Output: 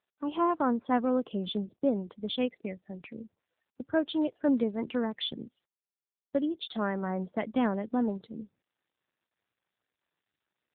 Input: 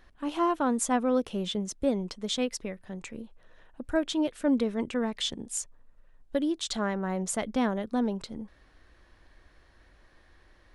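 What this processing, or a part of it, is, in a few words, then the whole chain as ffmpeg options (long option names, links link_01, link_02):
mobile call with aggressive noise cancelling: -af "highpass=frequency=110:width=0.5412,highpass=frequency=110:width=1.3066,afftdn=noise_reduction=36:noise_floor=-45" -ar 8000 -c:a libopencore_amrnb -b:a 7950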